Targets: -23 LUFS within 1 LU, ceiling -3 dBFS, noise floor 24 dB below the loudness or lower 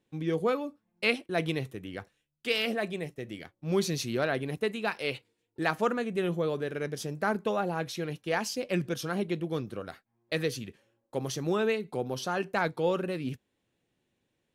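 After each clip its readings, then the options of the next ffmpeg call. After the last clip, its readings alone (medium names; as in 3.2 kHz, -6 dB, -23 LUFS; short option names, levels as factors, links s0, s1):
loudness -31.5 LUFS; peak level -10.5 dBFS; loudness target -23.0 LUFS
-> -af "volume=2.66,alimiter=limit=0.708:level=0:latency=1"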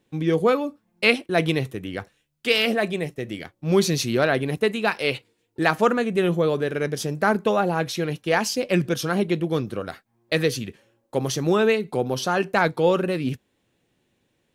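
loudness -23.0 LUFS; peak level -3.0 dBFS; noise floor -71 dBFS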